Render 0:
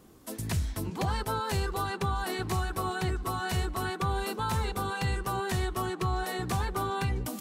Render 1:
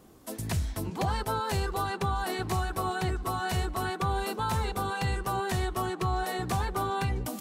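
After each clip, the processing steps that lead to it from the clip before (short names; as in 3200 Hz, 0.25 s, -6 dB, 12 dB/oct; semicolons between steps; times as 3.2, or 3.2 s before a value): bell 690 Hz +3.5 dB 0.76 oct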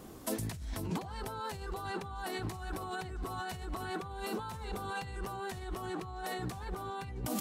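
negative-ratio compressor -38 dBFS, ratio -1; gain -1.5 dB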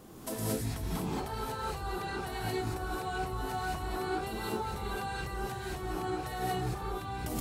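non-linear reverb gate 0.25 s rising, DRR -5.5 dB; gain -3 dB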